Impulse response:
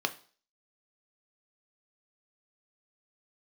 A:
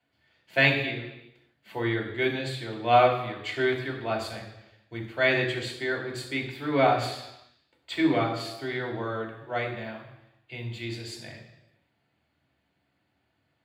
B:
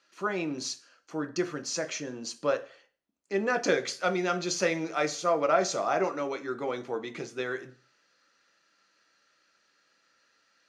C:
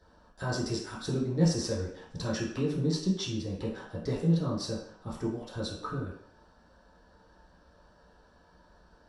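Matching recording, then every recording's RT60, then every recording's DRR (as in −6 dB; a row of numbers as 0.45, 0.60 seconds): B; 0.95, 0.45, 0.60 seconds; −1.0, 7.0, −7.5 decibels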